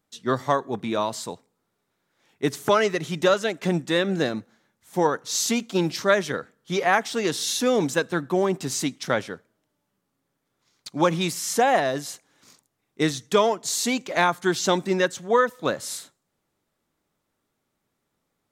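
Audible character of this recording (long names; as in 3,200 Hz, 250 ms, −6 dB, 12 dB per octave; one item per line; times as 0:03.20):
background noise floor −78 dBFS
spectral slope −3.5 dB per octave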